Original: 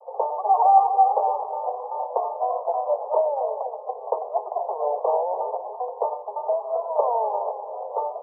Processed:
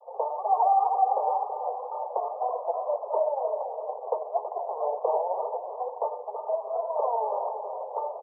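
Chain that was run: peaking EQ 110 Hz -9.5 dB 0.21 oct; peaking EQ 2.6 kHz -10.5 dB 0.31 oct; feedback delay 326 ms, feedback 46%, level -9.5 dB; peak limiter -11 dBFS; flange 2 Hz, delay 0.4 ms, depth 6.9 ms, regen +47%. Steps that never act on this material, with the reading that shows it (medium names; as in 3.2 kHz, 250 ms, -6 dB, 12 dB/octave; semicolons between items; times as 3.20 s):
peaking EQ 110 Hz: input has nothing below 360 Hz; peaking EQ 2.6 kHz: input has nothing above 1.2 kHz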